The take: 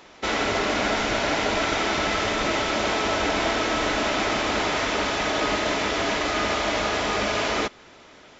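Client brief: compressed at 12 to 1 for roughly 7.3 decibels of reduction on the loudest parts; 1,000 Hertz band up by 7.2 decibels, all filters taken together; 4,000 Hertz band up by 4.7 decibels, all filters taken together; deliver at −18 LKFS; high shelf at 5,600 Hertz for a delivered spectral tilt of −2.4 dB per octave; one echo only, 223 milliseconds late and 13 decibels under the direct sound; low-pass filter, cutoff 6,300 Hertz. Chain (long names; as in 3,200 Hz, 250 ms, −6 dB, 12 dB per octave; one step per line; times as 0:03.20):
low-pass filter 6,300 Hz
parametric band 1,000 Hz +9 dB
parametric band 4,000 Hz +3.5 dB
high-shelf EQ 5,600 Hz +7 dB
downward compressor 12 to 1, threshold −23 dBFS
single-tap delay 223 ms −13 dB
level +8 dB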